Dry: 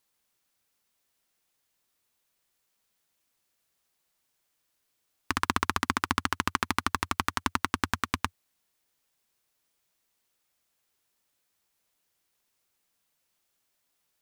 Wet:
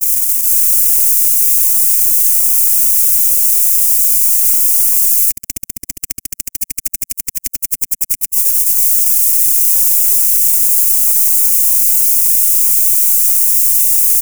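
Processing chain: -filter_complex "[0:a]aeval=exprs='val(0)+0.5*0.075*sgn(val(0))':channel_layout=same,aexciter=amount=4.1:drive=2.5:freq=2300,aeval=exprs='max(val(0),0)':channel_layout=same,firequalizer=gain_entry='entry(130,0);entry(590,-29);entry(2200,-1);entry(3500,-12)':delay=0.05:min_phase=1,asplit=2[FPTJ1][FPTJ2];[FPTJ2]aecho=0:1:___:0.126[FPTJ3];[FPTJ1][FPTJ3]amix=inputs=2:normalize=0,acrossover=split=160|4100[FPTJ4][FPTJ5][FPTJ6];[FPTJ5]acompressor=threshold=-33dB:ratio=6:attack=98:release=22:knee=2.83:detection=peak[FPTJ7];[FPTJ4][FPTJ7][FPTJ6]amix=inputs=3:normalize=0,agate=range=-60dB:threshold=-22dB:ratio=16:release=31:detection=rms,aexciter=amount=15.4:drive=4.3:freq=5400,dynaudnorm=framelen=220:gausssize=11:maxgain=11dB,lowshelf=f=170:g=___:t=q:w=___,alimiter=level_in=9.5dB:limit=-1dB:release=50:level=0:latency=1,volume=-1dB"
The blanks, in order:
465, -7, 1.5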